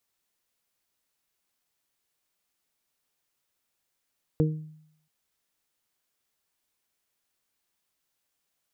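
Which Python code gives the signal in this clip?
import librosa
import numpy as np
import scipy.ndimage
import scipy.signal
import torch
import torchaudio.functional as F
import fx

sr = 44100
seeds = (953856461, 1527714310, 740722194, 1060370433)

y = fx.additive(sr, length_s=0.68, hz=155.0, level_db=-19.0, upper_db=(-3.5, -3.5), decay_s=0.71, upper_decays_s=(0.36, 0.28))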